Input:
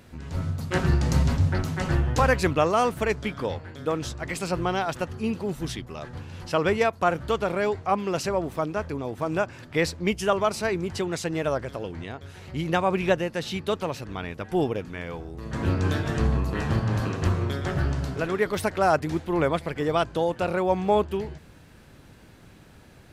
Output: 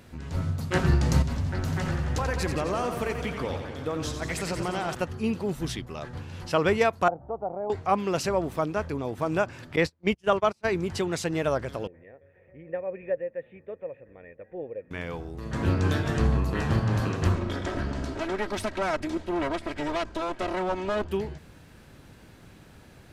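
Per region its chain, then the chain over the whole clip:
0:01.22–0:04.95: downward compressor 4 to 1, threshold −26 dBFS + feedback echo with a swinging delay time 88 ms, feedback 76%, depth 84 cents, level −8 dB
0:07.08–0:07.70: transistor ladder low-pass 820 Hz, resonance 75% + one half of a high-frequency compander encoder only
0:09.76–0:10.67: noise gate −27 dBFS, range −33 dB + high-shelf EQ 9,200 Hz −8 dB
0:11.87–0:14.91: formant resonators in series e + high-frequency loss of the air 250 metres
0:17.35–0:21.08: lower of the sound and its delayed copy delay 3.1 ms + low-pass filter 9,100 Hz + downward compressor 2 to 1, threshold −26 dBFS
whole clip: no processing

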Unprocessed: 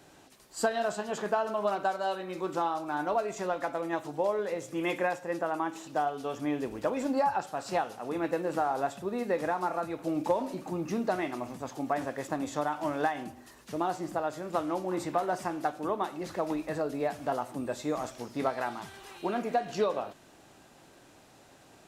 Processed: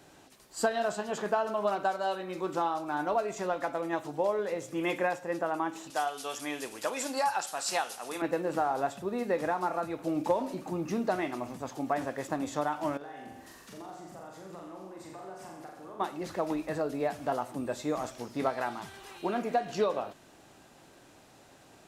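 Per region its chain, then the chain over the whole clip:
0:05.90–0:08.22: Butterworth low-pass 12,000 Hz + spectral tilt +4.5 dB per octave
0:12.97–0:16.00: downward compressor 4 to 1, threshold −47 dBFS + flutter between parallel walls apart 7.2 metres, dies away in 0.86 s
whole clip: no processing

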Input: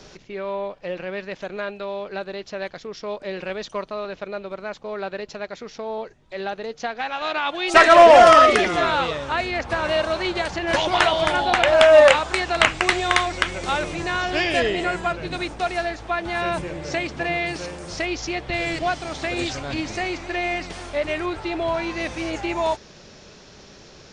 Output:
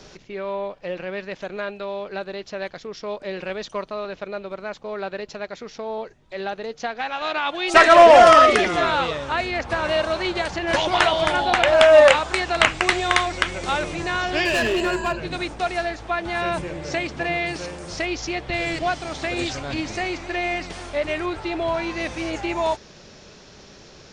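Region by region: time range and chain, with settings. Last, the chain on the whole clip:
0:14.45–0:15.20: EQ curve with evenly spaced ripples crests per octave 1.4, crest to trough 15 dB + gain into a clipping stage and back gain 17.5 dB
whole clip: no processing

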